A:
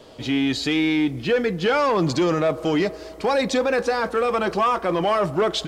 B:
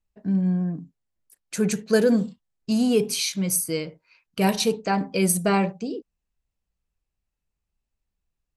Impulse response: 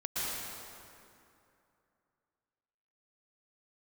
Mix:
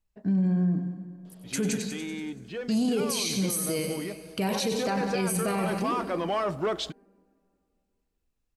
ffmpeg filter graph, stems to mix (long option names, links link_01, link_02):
-filter_complex "[0:a]adelay=1250,volume=-7.5dB,afade=type=in:start_time=4.55:duration=0.6:silence=0.398107[link_01];[1:a]alimiter=limit=-14dB:level=0:latency=1:release=126,volume=0dB,asplit=3[link_02][link_03][link_04];[link_02]atrim=end=1.87,asetpts=PTS-STARTPTS,afade=type=out:start_time=1.866:duration=0.004:curve=hsin[link_05];[link_03]atrim=start=1.87:end=2.46,asetpts=PTS-STARTPTS,volume=0[link_06];[link_04]atrim=start=2.46,asetpts=PTS-STARTPTS,afade=type=in:duration=0.004:curve=hsin[link_07];[link_05][link_06][link_07]concat=n=3:v=0:a=1,asplit=3[link_08][link_09][link_10];[link_09]volume=-19.5dB[link_11];[link_10]volume=-9dB[link_12];[2:a]atrim=start_sample=2205[link_13];[link_11][link_13]afir=irnorm=-1:irlink=0[link_14];[link_12]aecho=0:1:95|190|285|380|475|570|665|760|855:1|0.59|0.348|0.205|0.121|0.0715|0.0422|0.0249|0.0147[link_15];[link_01][link_08][link_14][link_15]amix=inputs=4:normalize=0,alimiter=limit=-19.5dB:level=0:latency=1:release=26"